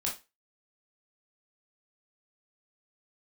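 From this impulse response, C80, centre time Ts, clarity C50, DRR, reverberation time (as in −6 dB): 16.5 dB, 25 ms, 8.5 dB, −3.5 dB, 0.25 s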